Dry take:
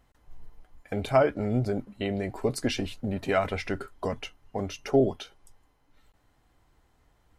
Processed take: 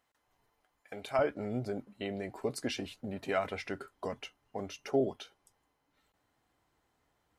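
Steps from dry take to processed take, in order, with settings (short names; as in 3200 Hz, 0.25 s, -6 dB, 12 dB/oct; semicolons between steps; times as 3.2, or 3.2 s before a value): HPF 750 Hz 6 dB/oct, from 1.19 s 200 Hz; gain -6 dB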